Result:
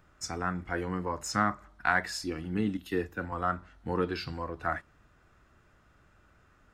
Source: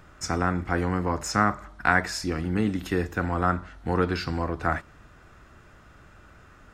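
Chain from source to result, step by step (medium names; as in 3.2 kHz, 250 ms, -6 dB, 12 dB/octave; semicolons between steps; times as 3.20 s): in parallel at -7.5 dB: saturation -14 dBFS, distortion -15 dB; on the sum: spectral noise reduction 7 dB; 2.77–3.32 s: three bands expanded up and down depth 70%; trim -7 dB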